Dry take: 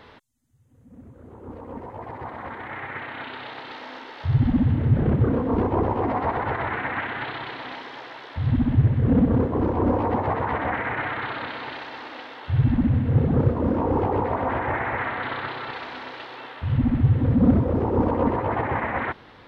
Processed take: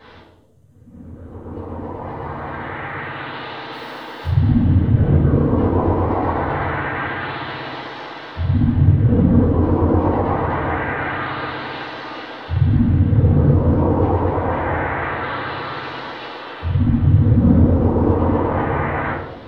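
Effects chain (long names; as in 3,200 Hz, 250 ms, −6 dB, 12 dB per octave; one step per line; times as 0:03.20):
in parallel at −1.5 dB: downward compressor, threshold −32 dBFS, peak gain reduction 18 dB
0:03.72–0:04.26: on the sum: log-companded quantiser 6 bits
convolution reverb RT60 1.1 s, pre-delay 4 ms, DRR −8.5 dB
level −10 dB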